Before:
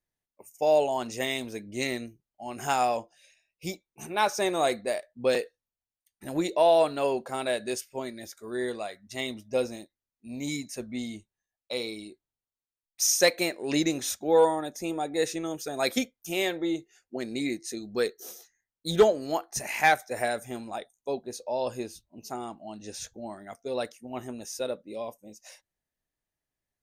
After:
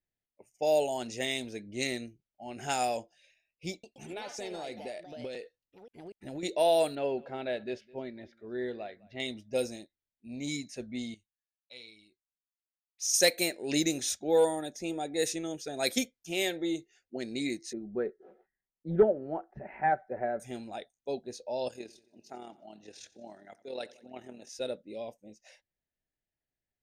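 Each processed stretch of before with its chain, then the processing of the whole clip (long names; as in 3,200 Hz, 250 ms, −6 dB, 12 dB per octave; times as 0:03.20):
0:03.71–0:06.43: notch filter 1,600 Hz + downward compressor 10 to 1, threshold −32 dBFS + delay with pitch and tempo change per echo 124 ms, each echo +3 semitones, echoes 2, each echo −6 dB
0:06.95–0:09.20: high-frequency loss of the air 320 metres + single-tap delay 209 ms −23 dB
0:11.14–0:13.14: guitar amp tone stack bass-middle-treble 5-5-5 + hard clipping −21 dBFS
0:17.73–0:20.40: low-pass filter 1,400 Hz 24 dB per octave + comb filter 5.3 ms, depth 37%
0:21.68–0:24.49: high-pass filter 360 Hz 6 dB per octave + amplitude modulation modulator 39 Hz, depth 40% + repeating echo 89 ms, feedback 58%, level −19.5 dB
whole clip: parametric band 1,100 Hz −13 dB 0.47 octaves; low-pass that shuts in the quiet parts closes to 2,600 Hz, open at −21.5 dBFS; high-shelf EQ 6,500 Hz +11.5 dB; level −3 dB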